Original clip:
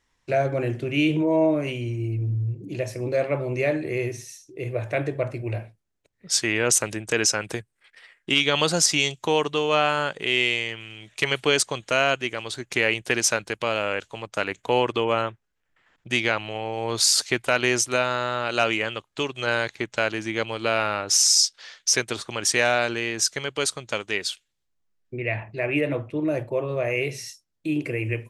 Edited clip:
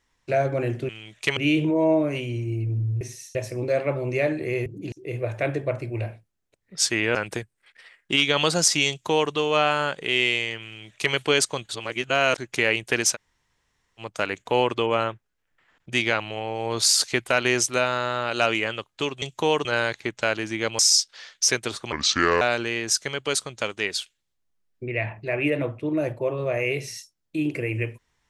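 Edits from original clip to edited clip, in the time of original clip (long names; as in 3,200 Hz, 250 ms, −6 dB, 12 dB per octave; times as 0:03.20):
0:02.53–0:02.79: swap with 0:04.10–0:04.44
0:06.67–0:07.33: remove
0:09.07–0:09.50: duplicate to 0:19.40
0:10.84–0:11.32: duplicate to 0:00.89
0:11.87–0:12.56: reverse
0:13.32–0:14.18: fill with room tone, crossfade 0.06 s
0:20.54–0:21.24: remove
0:22.37–0:22.72: play speed 71%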